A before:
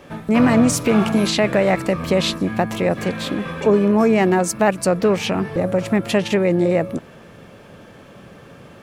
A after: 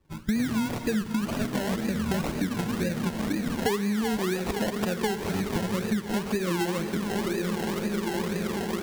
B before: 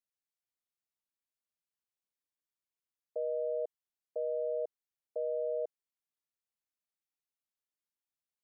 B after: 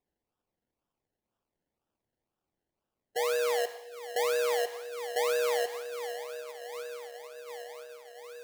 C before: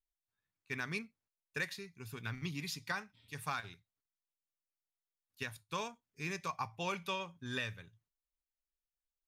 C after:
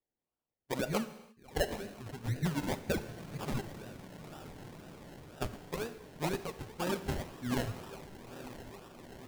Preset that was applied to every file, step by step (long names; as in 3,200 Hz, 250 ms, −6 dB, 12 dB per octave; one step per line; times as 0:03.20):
spectral dynamics exaggerated over time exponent 2
flat-topped bell 790 Hz −15.5 dB 1.2 octaves
feedback delay with all-pass diffusion 898 ms, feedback 71%, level −14 dB
in parallel at −7 dB: soft clipping −22.5 dBFS
on the sum: dynamic equaliser 3,500 Hz, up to −6 dB, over −44 dBFS, Q 1.2
sample-and-hold swept by an LFO 29×, swing 60% 2 Hz
reverb whose tail is shaped and stops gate 360 ms falling, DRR 11.5 dB
downward compressor 12 to 1, threshold −33 dBFS
level +8.5 dB